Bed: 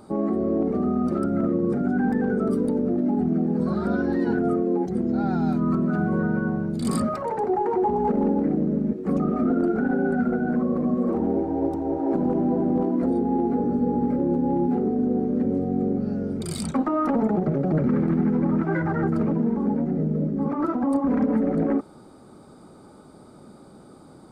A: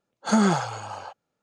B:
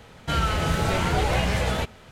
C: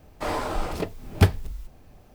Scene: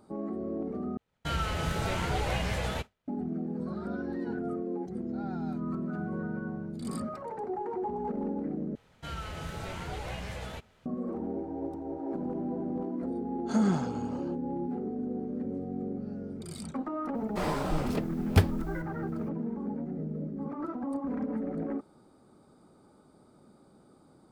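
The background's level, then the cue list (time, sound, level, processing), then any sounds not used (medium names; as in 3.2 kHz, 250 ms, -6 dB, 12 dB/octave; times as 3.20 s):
bed -11.5 dB
0.97 s: replace with B -7.5 dB + expander -34 dBFS
8.75 s: replace with B -15 dB
13.22 s: add A -14 dB + bass shelf 430 Hz +11 dB
17.15 s: add C -4.5 dB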